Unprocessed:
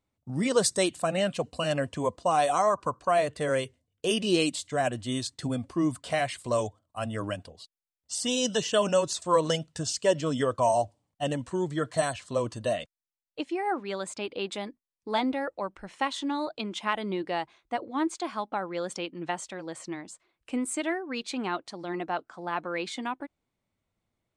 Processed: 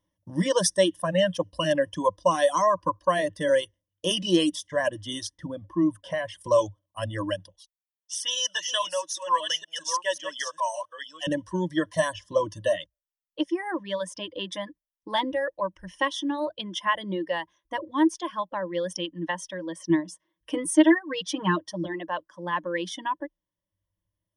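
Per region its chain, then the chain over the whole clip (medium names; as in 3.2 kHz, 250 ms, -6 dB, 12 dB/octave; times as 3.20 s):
5.38–6.41 s: treble shelf 2.4 kHz -11 dB + compression 1.5:1, threshold -31 dBFS
7.50–11.27 s: chunks repeated in reverse 536 ms, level -6 dB + high-pass 1.2 kHz + peaking EQ 4.8 kHz -5.5 dB 0.36 oct
19.89–21.86 s: high-pass 67 Hz + bass shelf 240 Hz +9 dB + comb 6.4 ms, depth 98%
whole clip: reverb removal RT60 1.7 s; rippled EQ curve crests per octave 1.2, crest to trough 17 dB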